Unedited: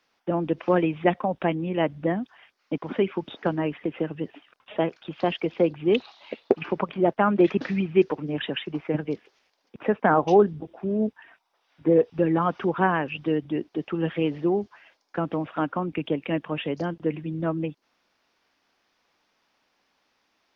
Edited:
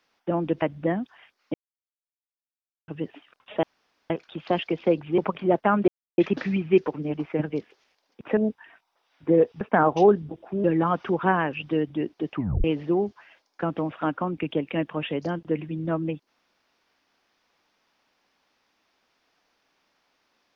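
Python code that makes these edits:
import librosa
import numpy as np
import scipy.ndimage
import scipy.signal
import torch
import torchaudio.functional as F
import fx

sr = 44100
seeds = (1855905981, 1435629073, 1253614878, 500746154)

y = fx.edit(x, sr, fx.cut(start_s=0.62, length_s=1.2),
    fx.silence(start_s=2.74, length_s=1.34),
    fx.insert_room_tone(at_s=4.83, length_s=0.47),
    fx.cut(start_s=5.91, length_s=0.81),
    fx.insert_silence(at_s=7.42, length_s=0.3),
    fx.cut(start_s=8.38, length_s=0.31),
    fx.move(start_s=9.92, length_s=1.03, to_s=12.19),
    fx.tape_stop(start_s=13.89, length_s=0.3), tone=tone)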